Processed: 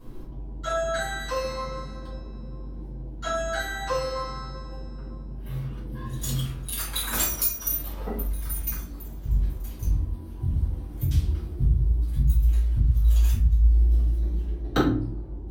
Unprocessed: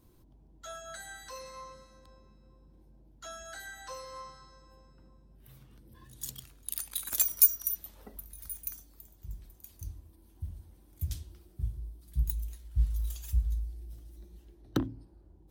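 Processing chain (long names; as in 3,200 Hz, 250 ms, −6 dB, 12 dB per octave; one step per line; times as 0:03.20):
high-shelf EQ 4,400 Hz −11.5 dB
downward compressor 12 to 1, threshold −35 dBFS, peak gain reduction 14.5 dB
convolution reverb RT60 0.50 s, pre-delay 3 ms, DRR −11.5 dB
level +7 dB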